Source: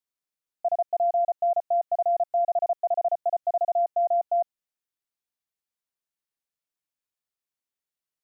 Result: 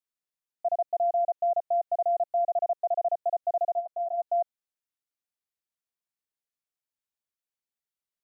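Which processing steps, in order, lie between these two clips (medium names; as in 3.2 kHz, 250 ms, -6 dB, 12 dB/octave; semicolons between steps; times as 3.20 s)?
dynamic bell 580 Hz, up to +3 dB, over -32 dBFS, Q 1.4; 3.75–4.22 s: three-phase chorus; trim -4.5 dB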